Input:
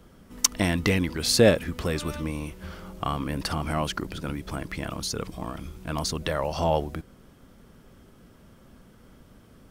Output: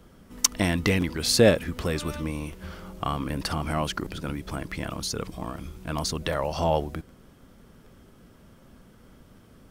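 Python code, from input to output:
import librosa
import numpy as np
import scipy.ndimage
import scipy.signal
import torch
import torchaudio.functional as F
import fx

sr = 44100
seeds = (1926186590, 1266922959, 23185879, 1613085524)

y = fx.buffer_crackle(x, sr, first_s=1.0, period_s=0.76, block=512, kind='repeat')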